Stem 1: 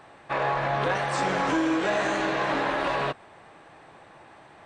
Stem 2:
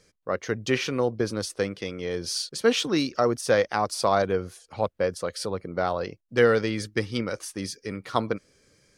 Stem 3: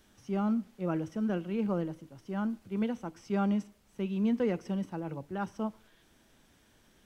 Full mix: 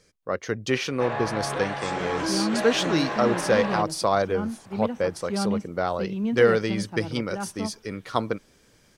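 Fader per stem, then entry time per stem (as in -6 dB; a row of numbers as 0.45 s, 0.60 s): -4.0 dB, 0.0 dB, +2.0 dB; 0.70 s, 0.00 s, 2.00 s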